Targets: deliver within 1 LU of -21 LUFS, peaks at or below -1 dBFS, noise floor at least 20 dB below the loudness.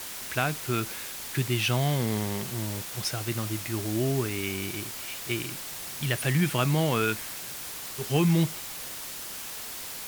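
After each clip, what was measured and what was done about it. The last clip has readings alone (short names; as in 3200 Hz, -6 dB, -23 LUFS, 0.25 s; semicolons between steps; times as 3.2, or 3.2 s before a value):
noise floor -38 dBFS; noise floor target -49 dBFS; loudness -29.0 LUFS; peak -10.5 dBFS; loudness target -21.0 LUFS
-> denoiser 11 dB, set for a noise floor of -38 dBFS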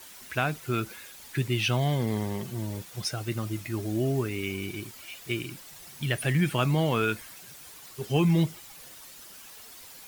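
noise floor -48 dBFS; noise floor target -49 dBFS
-> denoiser 6 dB, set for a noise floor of -48 dBFS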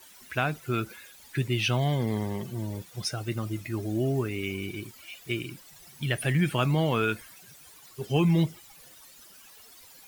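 noise floor -52 dBFS; loudness -29.0 LUFS; peak -11.5 dBFS; loudness target -21.0 LUFS
-> gain +8 dB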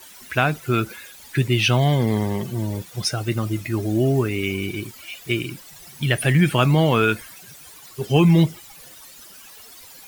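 loudness -21.0 LUFS; peak -3.5 dBFS; noise floor -44 dBFS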